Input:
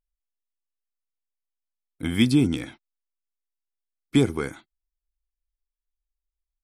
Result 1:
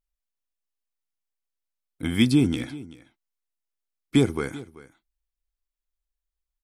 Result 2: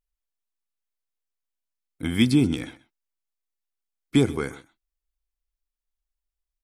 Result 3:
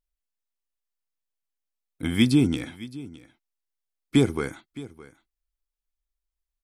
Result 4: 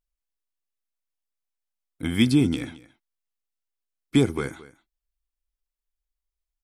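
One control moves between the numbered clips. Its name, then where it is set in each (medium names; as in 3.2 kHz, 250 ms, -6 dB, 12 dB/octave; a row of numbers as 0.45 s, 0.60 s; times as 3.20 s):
delay, time: 385 ms, 129 ms, 615 ms, 221 ms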